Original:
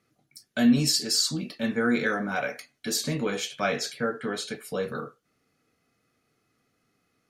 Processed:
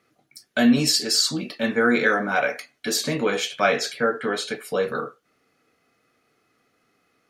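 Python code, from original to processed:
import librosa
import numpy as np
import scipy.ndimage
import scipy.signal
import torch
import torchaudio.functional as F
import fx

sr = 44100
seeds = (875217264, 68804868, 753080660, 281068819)

y = fx.bass_treble(x, sr, bass_db=-9, treble_db=-5)
y = F.gain(torch.from_numpy(y), 7.5).numpy()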